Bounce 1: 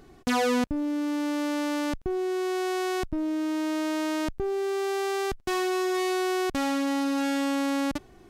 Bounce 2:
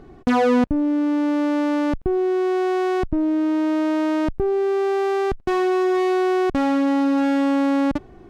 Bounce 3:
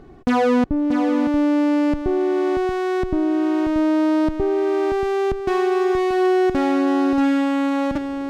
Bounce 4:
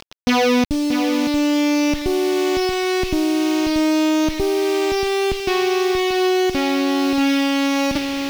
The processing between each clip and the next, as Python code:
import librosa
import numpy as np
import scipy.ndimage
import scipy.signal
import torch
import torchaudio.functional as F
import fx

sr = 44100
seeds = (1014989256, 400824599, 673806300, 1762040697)

y1 = fx.lowpass(x, sr, hz=1100.0, slope=6)
y1 = F.gain(torch.from_numpy(y1), 8.5).numpy()
y2 = y1 + 10.0 ** (-7.5 / 20.0) * np.pad(y1, (int(633 * sr / 1000.0), 0))[:len(y1)]
y3 = fx.quant_dither(y2, sr, seeds[0], bits=6, dither='none')
y3 = fx.band_shelf(y3, sr, hz=3600.0, db=11.0, octaves=1.7)
y3 = fx.rider(y3, sr, range_db=10, speed_s=2.0)